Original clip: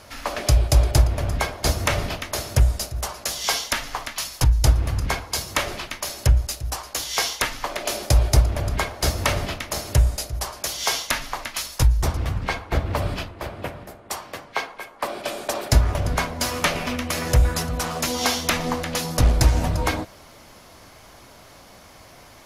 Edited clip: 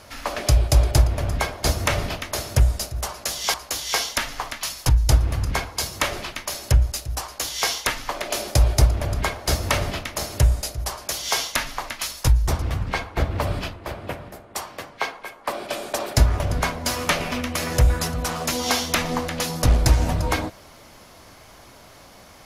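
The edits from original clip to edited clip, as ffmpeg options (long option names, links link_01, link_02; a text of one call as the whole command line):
ffmpeg -i in.wav -filter_complex "[0:a]asplit=3[link_01][link_02][link_03];[link_01]atrim=end=3.542[link_04];[link_02]atrim=start=6.778:end=7.232[link_05];[link_03]atrim=start=3.538[link_06];[link_04][link_05]acrossfade=duration=0.004:curve1=hsin:curve2=hsin[link_07];[link_07][link_06]acrossfade=duration=0.004:curve1=hsin:curve2=hsin" out.wav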